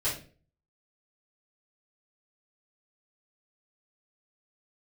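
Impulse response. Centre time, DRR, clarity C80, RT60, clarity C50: 31 ms, -12.0 dB, 12.0 dB, 0.40 s, 6.0 dB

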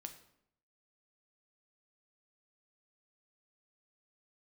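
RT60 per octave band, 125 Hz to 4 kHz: 0.85, 0.85, 0.75, 0.70, 0.60, 0.55 s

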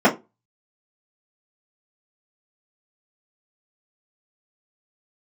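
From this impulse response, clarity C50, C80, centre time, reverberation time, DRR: 16.0 dB, 23.0 dB, 13 ms, 0.25 s, -8.0 dB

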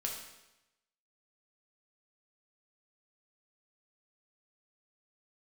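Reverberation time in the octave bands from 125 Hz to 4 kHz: 0.95, 0.95, 0.95, 0.95, 0.95, 0.90 s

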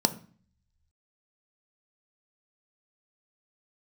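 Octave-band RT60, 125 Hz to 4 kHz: 1.1, 0.70, 0.40, 0.45, 0.45, 0.45 s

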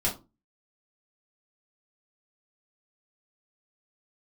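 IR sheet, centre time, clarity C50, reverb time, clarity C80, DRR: 20 ms, 11.0 dB, 0.30 s, 19.0 dB, -5.5 dB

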